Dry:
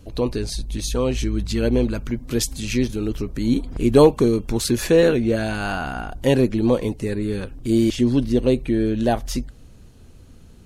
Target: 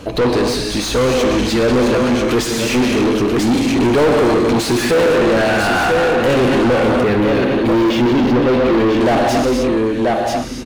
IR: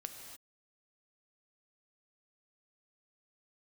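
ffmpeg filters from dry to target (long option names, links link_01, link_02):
-filter_complex "[0:a]aecho=1:1:987:0.335[link_01];[1:a]atrim=start_sample=2205[link_02];[link_01][link_02]afir=irnorm=-1:irlink=0,asplit=2[link_03][link_04];[link_04]highpass=frequency=720:poles=1,volume=37dB,asoftclip=type=tanh:threshold=-4.5dB[link_05];[link_03][link_05]amix=inputs=2:normalize=0,lowpass=frequency=1800:poles=1,volume=-6dB,asettb=1/sr,asplit=3[link_06][link_07][link_08];[link_06]atrim=end=7.014[link_09];[link_07]atrim=start=7.01:end=9.01,asetpts=PTS-STARTPTS,afade=type=in:duration=0.004:curve=qsin,afade=type=out:start_time=1.996:duration=0.004:curve=qsin,equalizer=frequency=8700:width_type=o:width=0.91:gain=-11.5[link_10];[link_08]atrim=start=9.006[link_11];[link_09][link_10]acrossfade=duration=0.004:curve1=hsin:curve2=qsin[link_12];[link_12][link_11]acrossfade=duration=0.004:curve1=qsin:curve2=hsin,volume=-1.5dB"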